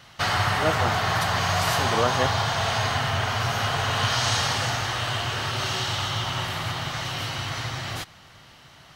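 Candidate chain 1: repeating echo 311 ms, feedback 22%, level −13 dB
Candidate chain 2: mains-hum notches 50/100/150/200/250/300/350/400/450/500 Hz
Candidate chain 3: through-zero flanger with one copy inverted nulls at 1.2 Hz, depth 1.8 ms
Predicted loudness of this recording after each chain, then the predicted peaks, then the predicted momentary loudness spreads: −24.0, −24.5, −28.0 LKFS; −8.0, −9.0, −12.0 dBFS; 7, 7, 7 LU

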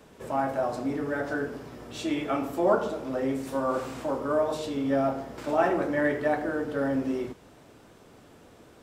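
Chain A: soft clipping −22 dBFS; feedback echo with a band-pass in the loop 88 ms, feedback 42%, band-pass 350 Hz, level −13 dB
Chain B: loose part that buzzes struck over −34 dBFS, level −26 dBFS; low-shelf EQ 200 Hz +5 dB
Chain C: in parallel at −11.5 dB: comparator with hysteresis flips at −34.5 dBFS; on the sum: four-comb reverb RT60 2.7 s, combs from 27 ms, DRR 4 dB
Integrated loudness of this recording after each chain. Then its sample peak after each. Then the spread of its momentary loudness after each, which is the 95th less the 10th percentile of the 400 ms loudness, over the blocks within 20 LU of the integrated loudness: −30.5, −27.5, −26.0 LKFS; −20.5, −10.0, −9.0 dBFS; 6, 8, 10 LU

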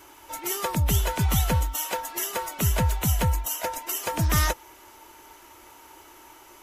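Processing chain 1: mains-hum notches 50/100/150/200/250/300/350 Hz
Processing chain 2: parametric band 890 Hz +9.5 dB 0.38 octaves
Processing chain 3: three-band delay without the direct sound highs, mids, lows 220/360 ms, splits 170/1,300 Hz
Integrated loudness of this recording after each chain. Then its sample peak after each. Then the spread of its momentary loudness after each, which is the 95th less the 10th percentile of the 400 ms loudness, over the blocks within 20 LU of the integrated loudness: −26.5, −24.0, −27.0 LKFS; −11.5, −10.5, −10.5 dBFS; 6, 22, 6 LU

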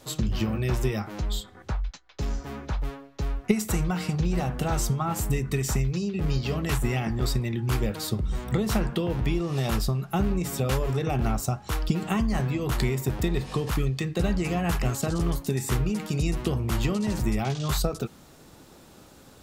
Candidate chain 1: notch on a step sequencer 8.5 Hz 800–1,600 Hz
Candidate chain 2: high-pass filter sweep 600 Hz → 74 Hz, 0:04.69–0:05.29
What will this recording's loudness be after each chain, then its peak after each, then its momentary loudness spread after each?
−28.5, −26.5 LKFS; −8.5, −9.0 dBFS; 6, 12 LU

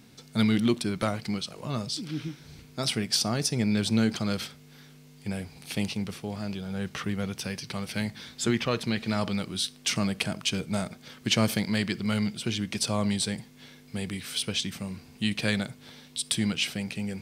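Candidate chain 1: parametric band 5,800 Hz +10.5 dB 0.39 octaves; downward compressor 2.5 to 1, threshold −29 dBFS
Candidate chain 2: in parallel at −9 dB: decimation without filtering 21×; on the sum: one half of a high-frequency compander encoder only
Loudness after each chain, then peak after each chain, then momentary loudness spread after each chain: −32.5, −27.5 LKFS; −11.0, −7.0 dBFS; 9, 12 LU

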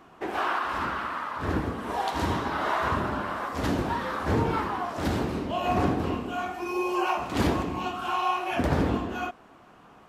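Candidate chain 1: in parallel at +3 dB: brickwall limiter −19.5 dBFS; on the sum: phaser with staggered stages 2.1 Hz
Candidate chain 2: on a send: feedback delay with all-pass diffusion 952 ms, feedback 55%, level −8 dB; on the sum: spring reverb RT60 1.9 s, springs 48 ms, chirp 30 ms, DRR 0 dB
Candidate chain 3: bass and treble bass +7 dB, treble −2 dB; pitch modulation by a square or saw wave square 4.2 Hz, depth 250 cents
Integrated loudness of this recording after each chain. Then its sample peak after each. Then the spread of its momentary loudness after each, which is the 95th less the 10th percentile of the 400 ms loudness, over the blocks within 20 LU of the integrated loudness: −25.0, −24.5, −26.0 LKFS; −10.0, −9.5, −7.5 dBFS; 4, 4, 8 LU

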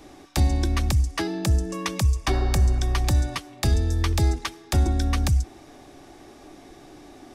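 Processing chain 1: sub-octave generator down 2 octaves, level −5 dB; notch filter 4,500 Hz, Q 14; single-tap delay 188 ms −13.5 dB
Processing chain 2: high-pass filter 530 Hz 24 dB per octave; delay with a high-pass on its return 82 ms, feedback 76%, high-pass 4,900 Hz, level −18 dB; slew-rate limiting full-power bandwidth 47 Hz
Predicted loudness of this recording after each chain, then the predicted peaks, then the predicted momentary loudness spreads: −24.0, −37.5 LKFS; −9.0, −21.0 dBFS; 6, 15 LU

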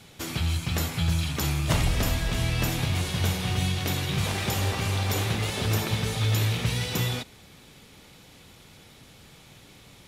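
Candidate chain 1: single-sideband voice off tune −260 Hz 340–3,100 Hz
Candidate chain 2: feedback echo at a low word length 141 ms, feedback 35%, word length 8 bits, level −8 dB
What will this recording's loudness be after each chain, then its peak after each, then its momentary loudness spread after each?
−34.0, −26.0 LKFS; −15.0, −11.5 dBFS; 4, 3 LU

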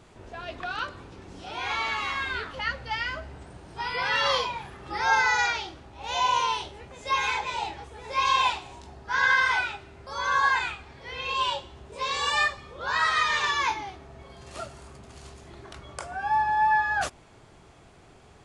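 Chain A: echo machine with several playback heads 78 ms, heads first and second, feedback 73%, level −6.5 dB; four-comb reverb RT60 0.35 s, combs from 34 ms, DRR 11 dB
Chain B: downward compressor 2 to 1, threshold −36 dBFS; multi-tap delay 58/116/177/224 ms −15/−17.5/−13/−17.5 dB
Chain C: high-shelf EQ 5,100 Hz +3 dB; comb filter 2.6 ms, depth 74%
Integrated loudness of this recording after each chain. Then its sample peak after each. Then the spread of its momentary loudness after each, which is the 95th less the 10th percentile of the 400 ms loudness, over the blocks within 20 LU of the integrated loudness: −23.5, −34.0, −23.5 LKFS; −8.0, −17.0, −8.0 dBFS; 17, 15, 20 LU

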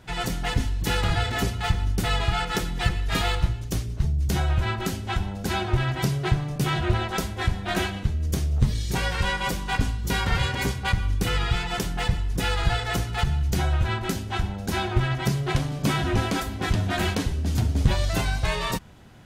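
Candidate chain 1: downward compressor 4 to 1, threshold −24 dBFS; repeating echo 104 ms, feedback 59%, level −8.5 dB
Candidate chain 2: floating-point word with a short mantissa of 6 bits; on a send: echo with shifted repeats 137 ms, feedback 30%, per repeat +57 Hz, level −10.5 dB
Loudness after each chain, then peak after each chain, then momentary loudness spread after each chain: −28.5, −25.5 LKFS; −13.5, −9.0 dBFS; 3, 4 LU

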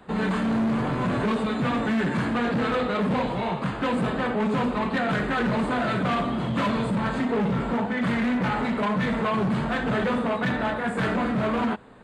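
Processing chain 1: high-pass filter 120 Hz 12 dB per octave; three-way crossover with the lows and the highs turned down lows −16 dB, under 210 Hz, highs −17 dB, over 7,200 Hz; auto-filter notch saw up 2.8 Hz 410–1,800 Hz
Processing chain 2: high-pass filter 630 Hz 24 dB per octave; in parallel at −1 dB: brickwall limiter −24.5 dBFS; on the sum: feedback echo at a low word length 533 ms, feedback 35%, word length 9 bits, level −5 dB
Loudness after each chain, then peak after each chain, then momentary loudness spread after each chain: −29.0, −24.5 LKFS; −16.0, −12.0 dBFS; 2, 3 LU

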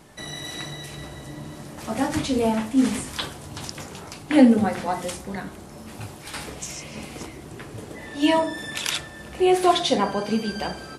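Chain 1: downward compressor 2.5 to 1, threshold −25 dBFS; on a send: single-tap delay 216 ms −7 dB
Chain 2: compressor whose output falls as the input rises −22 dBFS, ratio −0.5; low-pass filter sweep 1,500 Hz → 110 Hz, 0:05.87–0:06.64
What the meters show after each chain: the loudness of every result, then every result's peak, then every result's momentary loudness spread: −29.5, −28.5 LKFS; −9.5, −5.5 dBFS; 12, 19 LU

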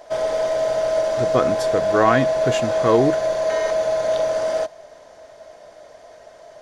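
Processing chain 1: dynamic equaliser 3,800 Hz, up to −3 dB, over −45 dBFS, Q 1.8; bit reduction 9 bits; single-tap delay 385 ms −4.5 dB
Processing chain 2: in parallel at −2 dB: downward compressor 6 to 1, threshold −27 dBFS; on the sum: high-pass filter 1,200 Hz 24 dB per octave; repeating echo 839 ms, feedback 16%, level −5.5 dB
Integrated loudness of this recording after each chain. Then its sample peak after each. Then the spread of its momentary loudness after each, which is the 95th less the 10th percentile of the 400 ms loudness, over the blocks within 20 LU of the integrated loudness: −18.5, −28.5 LKFS; −2.0, −9.0 dBFS; 7, 22 LU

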